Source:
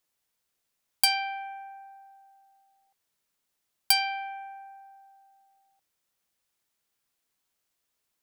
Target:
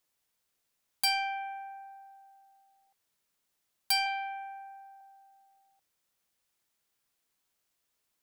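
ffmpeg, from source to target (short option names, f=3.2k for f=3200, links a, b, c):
-filter_complex "[0:a]asettb=1/sr,asplit=3[a][b][c];[a]atrim=end=4.064[d];[b]atrim=start=4.06:end=5.01,asetpts=PTS-STARTPTS,afade=t=in:d=0.004:c=qsin,afade=t=out:st=0.946:d=0.004:c=qsin,highpass=450[e];[c]atrim=start=5.006[f];[d][e]acrossfade=d=0.004:c1=hsin:c2=qsin[g];[g][f]acrossfade=d=0.004:c1=qsin:c2=hsin,asoftclip=type=tanh:threshold=-21.5dB"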